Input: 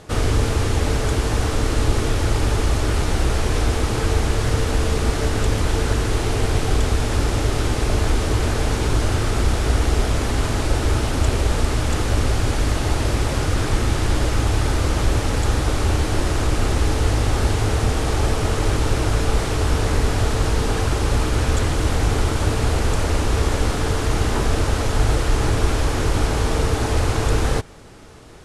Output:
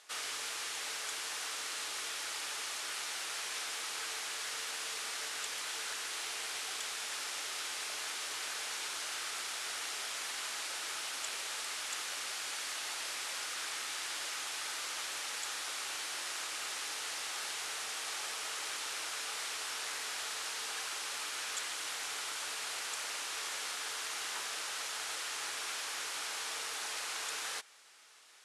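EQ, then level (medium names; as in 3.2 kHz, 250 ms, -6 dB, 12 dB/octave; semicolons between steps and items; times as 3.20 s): Bessel high-pass 2.1 kHz, order 2; -6.5 dB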